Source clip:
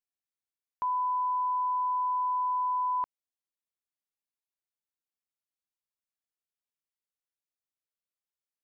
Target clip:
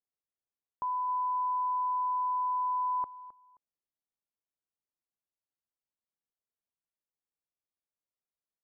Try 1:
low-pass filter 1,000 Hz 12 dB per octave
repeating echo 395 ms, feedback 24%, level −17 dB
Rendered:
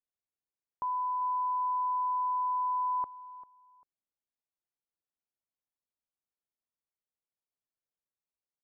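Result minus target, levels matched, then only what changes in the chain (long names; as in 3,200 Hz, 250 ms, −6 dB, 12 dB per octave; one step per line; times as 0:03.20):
echo 131 ms late
change: repeating echo 264 ms, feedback 24%, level −17 dB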